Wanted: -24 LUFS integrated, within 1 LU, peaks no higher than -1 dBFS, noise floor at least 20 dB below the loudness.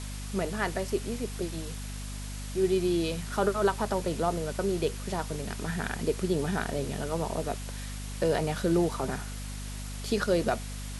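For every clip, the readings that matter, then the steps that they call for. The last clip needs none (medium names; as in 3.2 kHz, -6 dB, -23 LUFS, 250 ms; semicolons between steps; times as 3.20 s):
hum 50 Hz; highest harmonic 250 Hz; hum level -36 dBFS; noise floor -38 dBFS; noise floor target -51 dBFS; loudness -31.0 LUFS; peak level -13.5 dBFS; loudness target -24.0 LUFS
-> hum notches 50/100/150/200/250 Hz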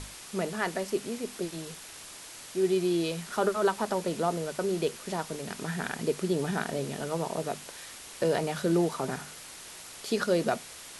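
hum not found; noise floor -46 dBFS; noise floor target -51 dBFS
-> noise print and reduce 6 dB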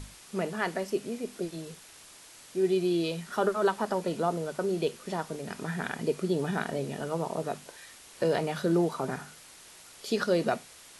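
noise floor -52 dBFS; loudness -31.0 LUFS; peak level -14.0 dBFS; loudness target -24.0 LUFS
-> trim +7 dB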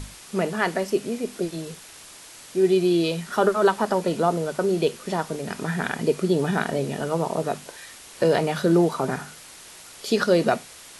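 loudness -24.0 LUFS; peak level -7.0 dBFS; noise floor -45 dBFS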